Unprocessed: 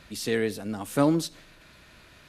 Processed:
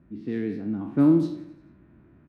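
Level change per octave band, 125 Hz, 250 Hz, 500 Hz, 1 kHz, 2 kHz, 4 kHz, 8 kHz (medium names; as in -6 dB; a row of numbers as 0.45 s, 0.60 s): +3.0 dB, +5.5 dB, -3.5 dB, -8.0 dB, under -10 dB, under -15 dB, under -20 dB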